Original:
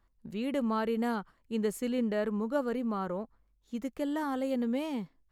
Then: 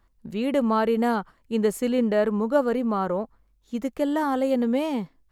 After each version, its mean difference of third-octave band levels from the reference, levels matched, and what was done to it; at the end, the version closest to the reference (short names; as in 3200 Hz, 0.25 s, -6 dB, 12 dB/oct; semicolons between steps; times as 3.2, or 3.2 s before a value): 1.0 dB: dynamic EQ 690 Hz, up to +4 dB, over -44 dBFS, Q 0.88; gain +6.5 dB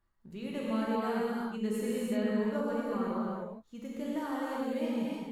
7.5 dB: non-linear reverb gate 0.39 s flat, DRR -6.5 dB; gain -8 dB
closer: first